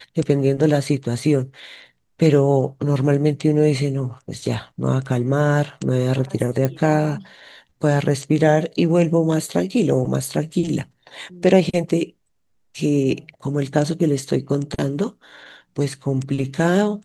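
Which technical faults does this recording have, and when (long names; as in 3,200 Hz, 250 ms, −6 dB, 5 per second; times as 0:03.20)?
0:06.65: click −8 dBFS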